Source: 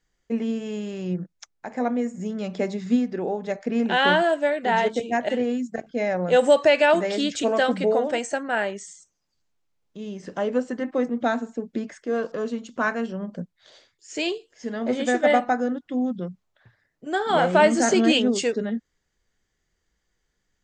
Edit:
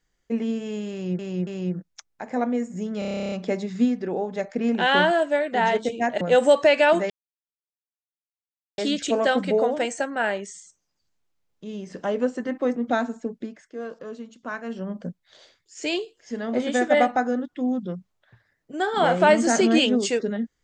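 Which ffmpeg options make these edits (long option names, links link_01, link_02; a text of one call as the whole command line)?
ffmpeg -i in.wav -filter_complex "[0:a]asplit=18[link_01][link_02][link_03][link_04][link_05][link_06][link_07][link_08][link_09][link_10][link_11][link_12][link_13][link_14][link_15][link_16][link_17][link_18];[link_01]atrim=end=1.192[link_19];[link_02]atrim=start=0.908:end=1.192[link_20];[link_03]atrim=start=0.908:end=2.462[link_21];[link_04]atrim=start=2.428:end=2.462[link_22];[link_05]atrim=start=2.428:end=2.462[link_23];[link_06]atrim=start=2.428:end=2.462[link_24];[link_07]atrim=start=2.428:end=2.462[link_25];[link_08]atrim=start=2.428:end=2.462[link_26];[link_09]atrim=start=2.428:end=2.462[link_27];[link_10]atrim=start=2.428:end=2.462[link_28];[link_11]atrim=start=2.428:end=2.462[link_29];[link_12]atrim=start=2.428:end=2.462[link_30];[link_13]atrim=start=2.428:end=2.462[link_31];[link_14]atrim=start=2.428:end=5.322[link_32];[link_15]atrim=start=6.218:end=7.11,asetpts=PTS-STARTPTS,afade=type=out:start_time=0.888:duration=0.004:curve=hsin,apad=pad_dur=1.68[link_33];[link_16]atrim=start=7.11:end=11.84,asetpts=PTS-STARTPTS,afade=type=in:duration=0.004:curve=hsin,afade=type=out:start_time=4.52:duration=0.21:silence=0.375837[link_34];[link_17]atrim=start=11.84:end=12.95,asetpts=PTS-STARTPTS,volume=-8.5dB[link_35];[link_18]atrim=start=12.95,asetpts=PTS-STARTPTS,afade=type=in:duration=0.21:silence=0.375837[link_36];[link_19][link_20]acrossfade=duration=0.004:curve1=hsin:curve2=hsin[link_37];[link_37][link_21]acrossfade=duration=0.004:curve1=hsin:curve2=hsin[link_38];[link_38][link_22]acrossfade=duration=0.004:curve1=hsin:curve2=hsin[link_39];[link_39][link_23]acrossfade=duration=0.004:curve1=hsin:curve2=hsin[link_40];[link_40][link_24]acrossfade=duration=0.004:curve1=hsin:curve2=hsin[link_41];[link_41][link_25]acrossfade=duration=0.004:curve1=hsin:curve2=hsin[link_42];[link_42][link_26]acrossfade=duration=0.004:curve1=hsin:curve2=hsin[link_43];[link_43][link_27]acrossfade=duration=0.004:curve1=hsin:curve2=hsin[link_44];[link_44][link_28]acrossfade=duration=0.004:curve1=hsin:curve2=hsin[link_45];[link_45][link_29]acrossfade=duration=0.004:curve1=hsin:curve2=hsin[link_46];[link_46][link_30]acrossfade=duration=0.004:curve1=hsin:curve2=hsin[link_47];[link_47][link_31]acrossfade=duration=0.004:curve1=hsin:curve2=hsin[link_48];[link_48][link_32]acrossfade=duration=0.004:curve1=hsin:curve2=hsin[link_49];[link_33][link_34][link_35][link_36]concat=n=4:v=0:a=1[link_50];[link_49][link_50]acrossfade=duration=0.004:curve1=hsin:curve2=hsin" out.wav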